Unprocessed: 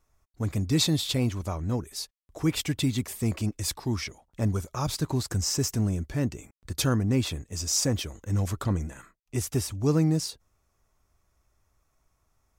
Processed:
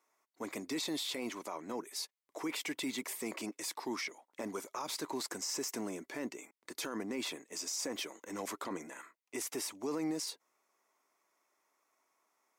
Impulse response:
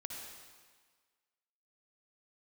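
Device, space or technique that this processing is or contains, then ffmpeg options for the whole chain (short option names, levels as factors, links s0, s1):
laptop speaker: -af "highpass=f=290:w=0.5412,highpass=f=290:w=1.3066,equalizer=f=980:t=o:w=0.37:g=6,equalizer=f=2100:t=o:w=0.33:g=7,alimiter=level_in=1.26:limit=0.0631:level=0:latency=1:release=27,volume=0.794,volume=0.708"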